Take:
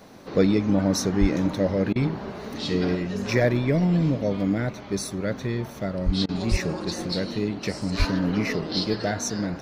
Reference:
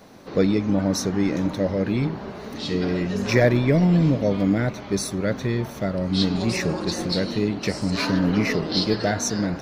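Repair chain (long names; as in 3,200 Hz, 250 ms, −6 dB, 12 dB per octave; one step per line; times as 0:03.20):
high-pass at the plosives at 0:01.20/0:06.05/0:06.50/0:07.98
repair the gap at 0:01.93/0:06.26, 26 ms
level correction +3.5 dB, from 0:02.95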